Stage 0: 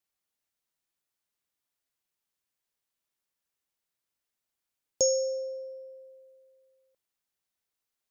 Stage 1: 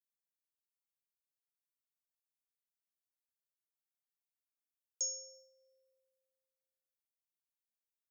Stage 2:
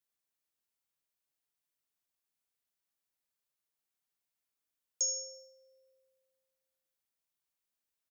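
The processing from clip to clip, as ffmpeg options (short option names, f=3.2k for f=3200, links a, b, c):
-af "aderivative,acompressor=mode=upward:threshold=-50dB:ratio=2.5,agate=range=-33dB:threshold=-51dB:ratio=3:detection=peak,volume=-7.5dB"
-af "aecho=1:1:76|152|228:0.251|0.0829|0.0274,volume=4.5dB"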